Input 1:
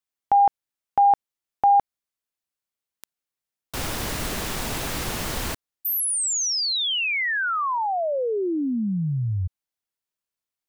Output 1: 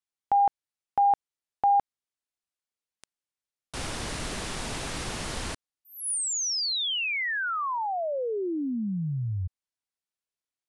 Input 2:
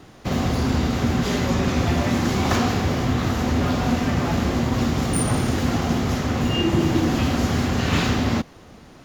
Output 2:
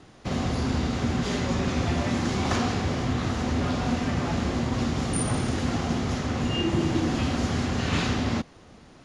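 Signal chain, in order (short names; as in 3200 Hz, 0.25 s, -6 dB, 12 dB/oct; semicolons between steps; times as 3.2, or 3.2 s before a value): elliptic low-pass 10000 Hz, stop band 70 dB; gain -4 dB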